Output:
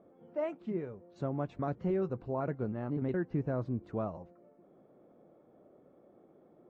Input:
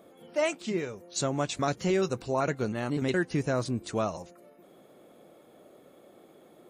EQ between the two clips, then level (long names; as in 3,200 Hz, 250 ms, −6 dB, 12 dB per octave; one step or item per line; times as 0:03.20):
low-pass filter 1,200 Hz 12 dB per octave
low-shelf EQ 290 Hz +5.5 dB
−7.5 dB